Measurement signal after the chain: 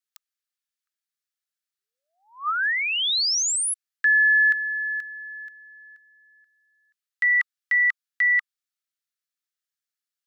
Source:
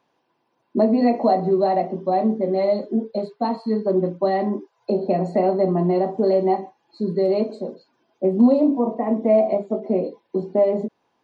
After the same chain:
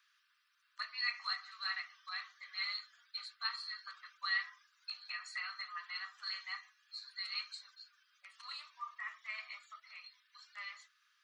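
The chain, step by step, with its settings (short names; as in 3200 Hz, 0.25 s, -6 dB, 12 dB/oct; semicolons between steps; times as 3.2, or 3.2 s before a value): rippled Chebyshev high-pass 1200 Hz, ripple 3 dB; gain +4.5 dB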